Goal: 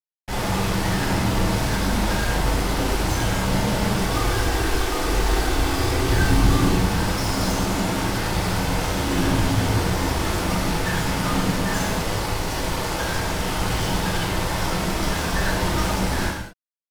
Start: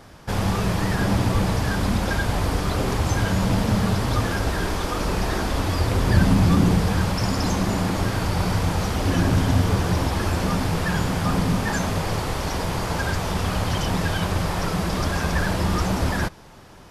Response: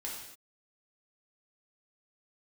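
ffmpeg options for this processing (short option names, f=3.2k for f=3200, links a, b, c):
-filter_complex "[0:a]asettb=1/sr,asplit=3[a][b][c];[a]atrim=end=3.964[d];[b]atrim=start=3.96:end=6.68,asetpts=PTS-STARTPTS,afade=t=in:d=0.004:c=qsin,afade=t=out:st=2.716:d=0.004:c=qsin,aecho=1:1:2.6:0.45,atrim=end_sample=119952[e];[c]atrim=start=6.676[f];[d][e]acrossfade=d=0.004:c1=hsin:c2=qsin[g];[g][f]acrossfade=d=0.004:c1=qsin:c2=hsin,acrusher=bits=3:mix=0:aa=0.5[h];[1:a]atrim=start_sample=2205,afade=t=out:st=0.3:d=0.01,atrim=end_sample=13671[i];[h][i]afir=irnorm=-1:irlink=0"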